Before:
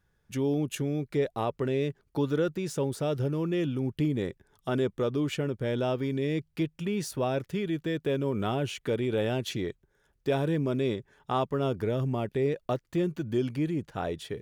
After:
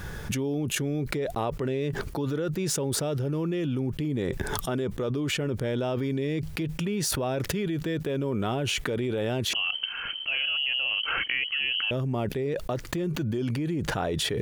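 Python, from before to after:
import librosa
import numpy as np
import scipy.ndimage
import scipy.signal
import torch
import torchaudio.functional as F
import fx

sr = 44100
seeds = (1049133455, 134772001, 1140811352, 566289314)

y = fx.freq_invert(x, sr, carrier_hz=3100, at=(9.53, 11.91))
y = fx.env_flatten(y, sr, amount_pct=100)
y = y * 10.0 ** (-5.0 / 20.0)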